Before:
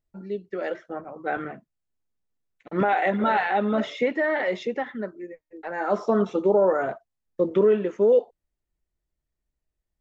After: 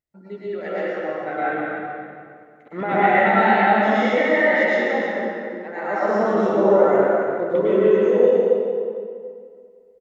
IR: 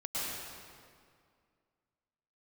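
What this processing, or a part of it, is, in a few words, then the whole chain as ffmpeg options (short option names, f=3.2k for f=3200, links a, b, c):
stadium PA: -filter_complex "[0:a]highpass=f=130:p=1,equalizer=f=2k:t=o:w=0.23:g=8,aecho=1:1:189.5|279.9:0.282|0.316[a];[1:a]atrim=start_sample=2205[b];[a][b]afir=irnorm=-1:irlink=0"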